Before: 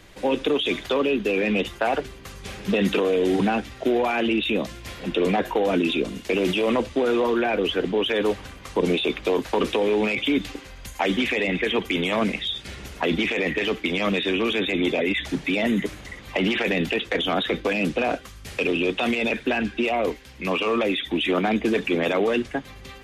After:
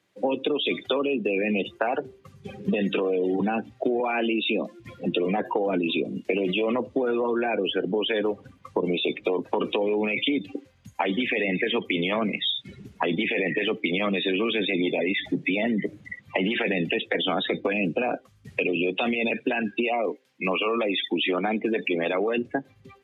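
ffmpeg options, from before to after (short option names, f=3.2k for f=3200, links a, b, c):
-filter_complex "[0:a]asettb=1/sr,asplit=3[a][b][c];[a]atrim=end=4.004[d];[b]atrim=start=4:end=4.8,asetpts=PTS-STARTPTS,afade=t=in:d=0.004:c=qsin,afade=t=out:st=0.796:d=0.004:c=qsin,highpass=f=200:w=0.5412,highpass=f=200:w=1.3066[e];[c]atrim=start=4.796[f];[d][e]acrossfade=d=0.004:c1=hsin:c2=qsin[g];[g][f]acrossfade=d=0.004:c1=qsin:c2=hsin,asettb=1/sr,asplit=3[h][i][j];[h]atrim=end=19.494[k];[i]atrim=start=19.49:end=22.38,asetpts=PTS-STARTPTS,afade=t=in:d=0.004:c=qsin,afade=t=out:st=2.886:d=0.004:c=qsin,lowshelf=f=140:g=-10.5[l];[j]atrim=start=22.376[m];[k][l]acrossfade=d=0.004:c1=hsin:c2=qsin[n];[n][m]acrossfade=d=0.004:c1=qsin:c2=hsin,afftdn=nr=25:nf=-30,highpass=f=120:w=0.5412,highpass=f=120:w=1.3066,acompressor=threshold=-27dB:ratio=6,volume=5dB"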